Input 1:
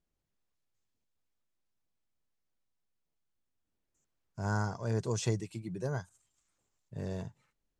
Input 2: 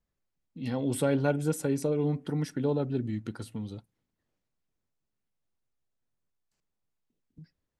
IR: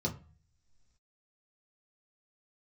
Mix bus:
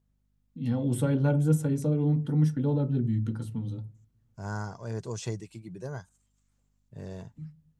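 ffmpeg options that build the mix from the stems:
-filter_complex "[0:a]aeval=exprs='val(0)+0.000355*(sin(2*PI*50*n/s)+sin(2*PI*2*50*n/s)/2+sin(2*PI*3*50*n/s)/3+sin(2*PI*4*50*n/s)/4+sin(2*PI*5*50*n/s)/5)':c=same,volume=0.75[s0];[1:a]equalizer=f=2200:w=0.53:g=-4,volume=0.891,asplit=2[s1][s2];[s2]volume=0.299[s3];[2:a]atrim=start_sample=2205[s4];[s3][s4]afir=irnorm=-1:irlink=0[s5];[s0][s1][s5]amix=inputs=3:normalize=0"

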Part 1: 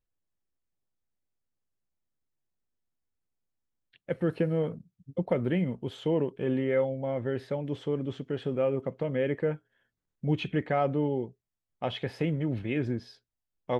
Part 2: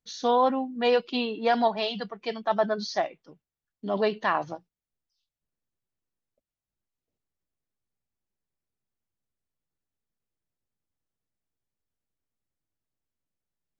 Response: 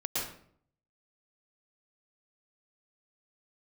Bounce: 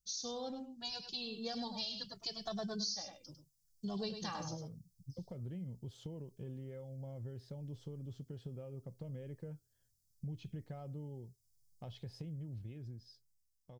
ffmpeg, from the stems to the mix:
-filter_complex "[0:a]lowpass=f=1200:p=1,acompressor=threshold=0.01:ratio=3,volume=0.447[s0];[1:a]lowshelf=f=160:g=10,asplit=2[s1][s2];[s2]adelay=2.2,afreqshift=0.75[s3];[s1][s3]amix=inputs=2:normalize=1,volume=0.596,asplit=2[s4][s5];[s5]volume=0.316,aecho=0:1:101:1[s6];[s0][s4][s6]amix=inputs=3:normalize=0,dynaudnorm=f=420:g=9:m=3.16,firequalizer=gain_entry='entry(110,0);entry(260,-14);entry(2000,-17);entry(5000,12)':delay=0.05:min_phase=1,acompressor=threshold=0.0126:ratio=5"

